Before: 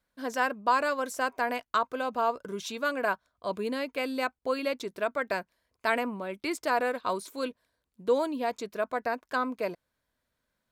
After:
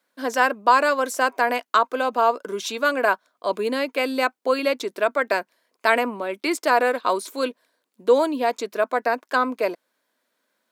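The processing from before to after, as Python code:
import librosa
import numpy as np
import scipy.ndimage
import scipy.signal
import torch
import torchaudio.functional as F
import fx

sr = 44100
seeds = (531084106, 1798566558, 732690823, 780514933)

y = scipy.signal.sosfilt(scipy.signal.butter(4, 250.0, 'highpass', fs=sr, output='sos'), x)
y = y * 10.0 ** (8.5 / 20.0)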